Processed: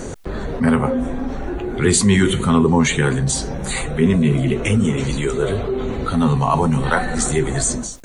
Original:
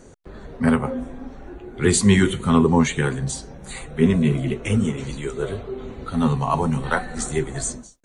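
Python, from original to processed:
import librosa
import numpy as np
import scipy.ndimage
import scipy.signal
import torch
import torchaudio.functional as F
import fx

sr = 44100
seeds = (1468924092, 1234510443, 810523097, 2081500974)

y = fx.env_flatten(x, sr, amount_pct=50)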